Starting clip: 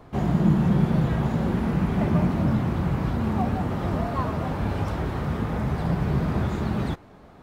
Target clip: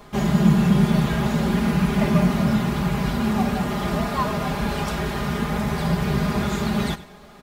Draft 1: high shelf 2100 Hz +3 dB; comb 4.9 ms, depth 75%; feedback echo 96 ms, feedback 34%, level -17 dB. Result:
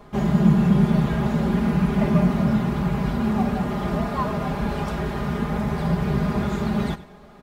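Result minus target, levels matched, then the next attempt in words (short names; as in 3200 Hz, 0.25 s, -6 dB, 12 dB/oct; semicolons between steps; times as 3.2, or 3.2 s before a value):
4000 Hz band -7.0 dB
high shelf 2100 Hz +13 dB; comb 4.9 ms, depth 75%; feedback echo 96 ms, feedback 34%, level -17 dB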